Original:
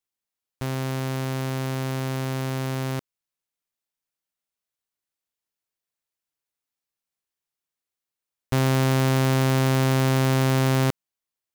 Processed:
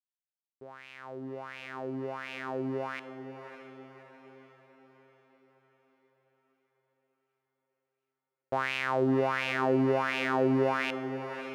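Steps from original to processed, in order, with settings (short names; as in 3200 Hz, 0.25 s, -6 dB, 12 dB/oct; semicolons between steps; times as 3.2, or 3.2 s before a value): opening faded in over 2.82 s; wah 1.4 Hz 300–2600 Hz, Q 5.1; diffused feedback echo 0.595 s, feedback 51%, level -10.5 dB; gain +7 dB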